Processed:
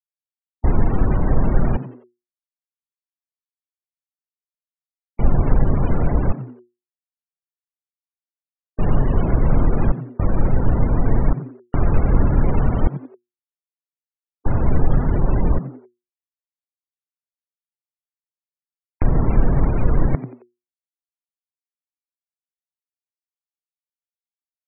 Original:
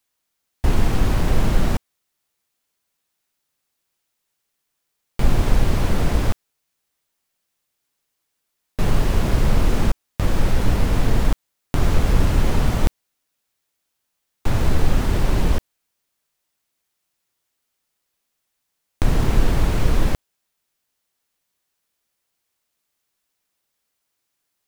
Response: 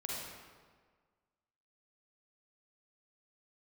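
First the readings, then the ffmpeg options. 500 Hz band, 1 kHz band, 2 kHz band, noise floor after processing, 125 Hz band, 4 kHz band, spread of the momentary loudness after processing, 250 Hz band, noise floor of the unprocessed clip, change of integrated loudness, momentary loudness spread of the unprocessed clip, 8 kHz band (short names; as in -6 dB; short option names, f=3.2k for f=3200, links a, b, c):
+1.5 dB, 0.0 dB, -6.0 dB, under -85 dBFS, +2.0 dB, under -20 dB, 8 LU, +2.0 dB, -77 dBFS, +1.0 dB, 7 LU, under -40 dB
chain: -filter_complex "[0:a]afftfilt=real='re*gte(hypot(re,im),0.0562)':imag='im*gte(hypot(re,im),0.0562)':win_size=1024:overlap=0.75,asplit=2[a][b];[b]asplit=3[c][d][e];[c]adelay=89,afreqshift=120,volume=-15dB[f];[d]adelay=178,afreqshift=240,volume=-24.4dB[g];[e]adelay=267,afreqshift=360,volume=-33.7dB[h];[f][g][h]amix=inputs=3:normalize=0[i];[a][i]amix=inputs=2:normalize=0,volume=1dB"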